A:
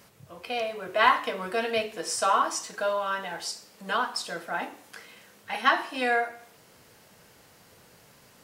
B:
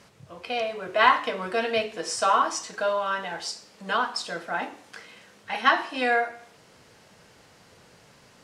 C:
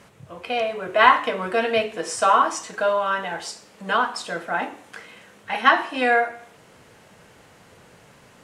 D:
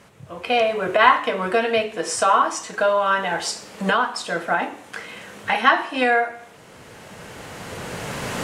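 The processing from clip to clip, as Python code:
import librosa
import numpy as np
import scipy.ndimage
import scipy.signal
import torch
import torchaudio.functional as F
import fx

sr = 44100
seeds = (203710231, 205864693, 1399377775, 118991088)

y1 = scipy.signal.sosfilt(scipy.signal.butter(2, 7500.0, 'lowpass', fs=sr, output='sos'), x)
y1 = F.gain(torch.from_numpy(y1), 2.0).numpy()
y2 = fx.peak_eq(y1, sr, hz=4900.0, db=-7.5, octaves=0.79)
y2 = F.gain(torch.from_numpy(y2), 4.5).numpy()
y3 = fx.recorder_agc(y2, sr, target_db=-10.0, rise_db_per_s=11.0, max_gain_db=30)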